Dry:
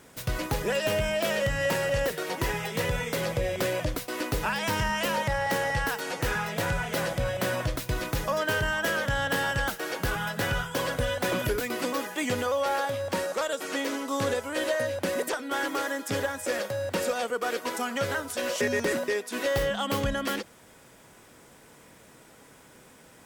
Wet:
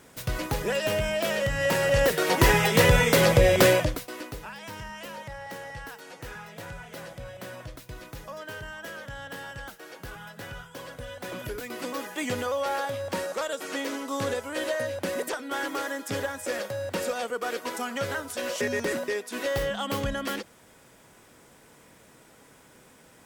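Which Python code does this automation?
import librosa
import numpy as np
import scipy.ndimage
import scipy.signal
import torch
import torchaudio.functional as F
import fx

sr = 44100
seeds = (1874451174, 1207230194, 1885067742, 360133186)

y = fx.gain(x, sr, db=fx.line((1.51, 0.0), (2.46, 10.0), (3.71, 10.0), (3.95, -1.0), (4.46, -12.0), (10.99, -12.0), (12.19, -1.5)))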